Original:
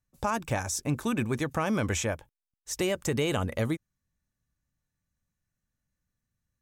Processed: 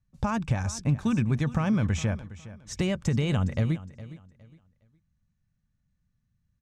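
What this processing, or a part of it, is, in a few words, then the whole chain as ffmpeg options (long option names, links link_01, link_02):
jukebox: -af "lowpass=5800,lowshelf=frequency=250:width_type=q:width=1.5:gain=9,acompressor=threshold=-21dB:ratio=6,aecho=1:1:412|824|1236:0.15|0.0404|0.0109"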